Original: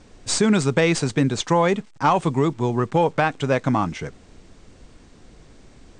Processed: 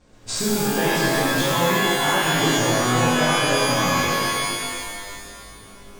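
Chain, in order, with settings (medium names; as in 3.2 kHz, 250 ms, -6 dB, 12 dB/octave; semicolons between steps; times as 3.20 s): waveshaping leveller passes 1; chorus 0.38 Hz, delay 18 ms, depth 4.7 ms; compression, threshold -21 dBFS, peak gain reduction 8.5 dB; pitch-shifted reverb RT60 2.1 s, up +12 st, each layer -2 dB, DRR -6.5 dB; trim -5 dB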